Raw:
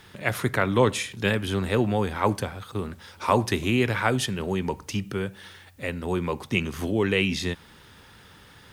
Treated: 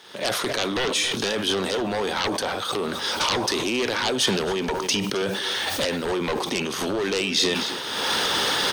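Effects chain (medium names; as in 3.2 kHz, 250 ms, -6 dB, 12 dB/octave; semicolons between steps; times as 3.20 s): recorder AGC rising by 41 dB/s; high-pass 510 Hz 12 dB/octave; tilt shelf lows +6 dB; wavefolder -20.5 dBFS; waveshaping leveller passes 1; high-order bell 5 kHz +8.5 dB; band-stop 7.4 kHz, Q 5.7; echo from a far wall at 46 m, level -14 dB; decay stretcher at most 30 dB/s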